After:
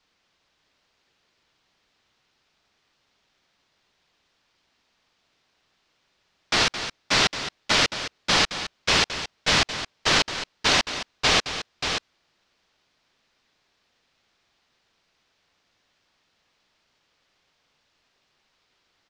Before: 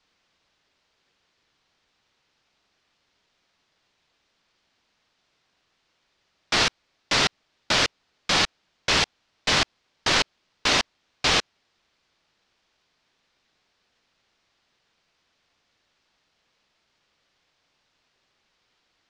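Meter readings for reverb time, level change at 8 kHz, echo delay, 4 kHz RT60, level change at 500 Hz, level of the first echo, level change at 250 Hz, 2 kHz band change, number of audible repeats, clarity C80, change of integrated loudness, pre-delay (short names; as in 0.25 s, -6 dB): none, +1.5 dB, 0.217 s, none, +1.0 dB, -10.5 dB, +1.0 dB, +1.5 dB, 2, none, +0.5 dB, none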